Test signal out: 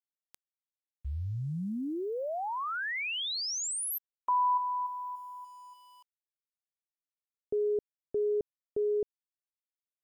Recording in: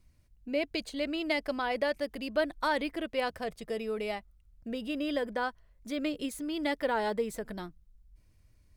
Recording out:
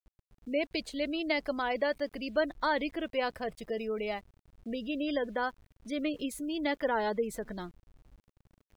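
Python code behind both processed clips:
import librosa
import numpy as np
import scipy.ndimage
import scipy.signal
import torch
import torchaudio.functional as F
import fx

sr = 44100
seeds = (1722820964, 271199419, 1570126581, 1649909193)

y = fx.spec_gate(x, sr, threshold_db=-30, keep='strong')
y = np.where(np.abs(y) >= 10.0 ** (-57.0 / 20.0), y, 0.0)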